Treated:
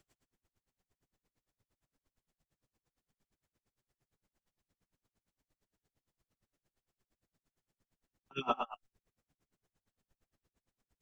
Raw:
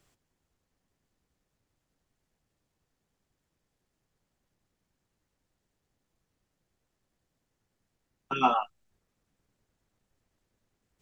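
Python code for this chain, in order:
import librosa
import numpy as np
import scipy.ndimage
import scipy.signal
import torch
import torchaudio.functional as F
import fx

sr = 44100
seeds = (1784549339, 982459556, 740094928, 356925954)

p1 = x + fx.echo_single(x, sr, ms=112, db=-8.0, dry=0)
y = p1 * 10.0 ** (-32 * (0.5 - 0.5 * np.cos(2.0 * np.pi * 8.7 * np.arange(len(p1)) / sr)) / 20.0)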